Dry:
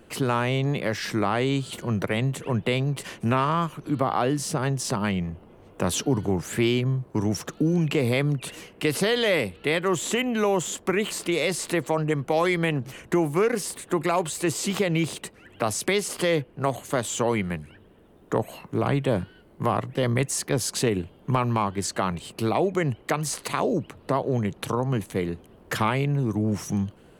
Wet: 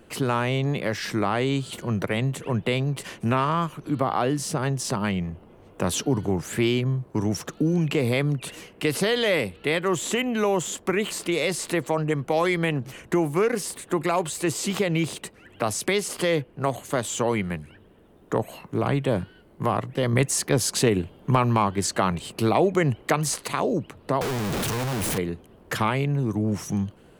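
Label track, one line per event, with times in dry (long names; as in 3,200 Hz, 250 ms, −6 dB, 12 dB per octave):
20.130000	23.360000	clip gain +3 dB
24.210000	25.180000	sign of each sample alone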